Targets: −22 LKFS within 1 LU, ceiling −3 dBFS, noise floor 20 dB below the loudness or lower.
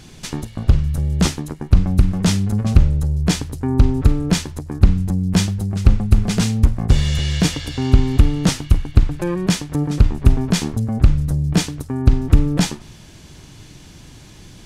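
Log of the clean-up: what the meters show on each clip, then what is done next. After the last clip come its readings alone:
integrated loudness −18.5 LKFS; sample peak −1.5 dBFS; target loudness −22.0 LKFS
→ level −3.5 dB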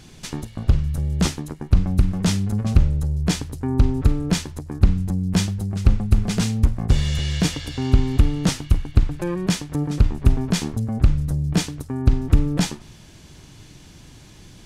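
integrated loudness −22.0 LKFS; sample peak −5.0 dBFS; background noise floor −45 dBFS

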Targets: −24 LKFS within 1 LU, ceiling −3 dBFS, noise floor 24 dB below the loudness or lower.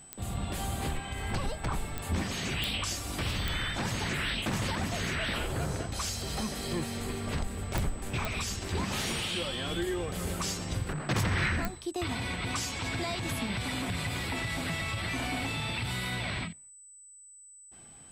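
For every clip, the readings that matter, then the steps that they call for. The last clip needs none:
number of clicks 7; interfering tone 8,000 Hz; level of the tone −50 dBFS; integrated loudness −32.5 LKFS; sample peak −14.0 dBFS; target loudness −24.0 LKFS
→ click removal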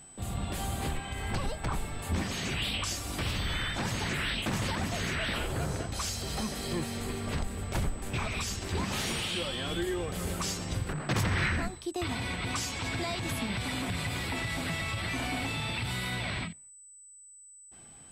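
number of clicks 0; interfering tone 8,000 Hz; level of the tone −50 dBFS
→ notch filter 8,000 Hz, Q 30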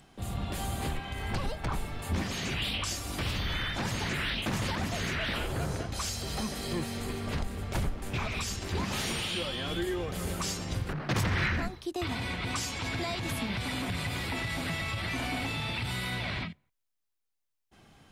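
interfering tone none found; integrated loudness −33.0 LKFS; sample peak −21.0 dBFS; target loudness −24.0 LKFS
→ level +9 dB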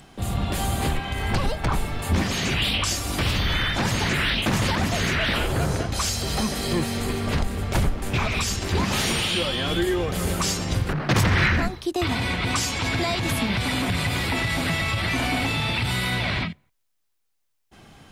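integrated loudness −24.0 LKFS; sample peak −12.0 dBFS; background noise floor −72 dBFS

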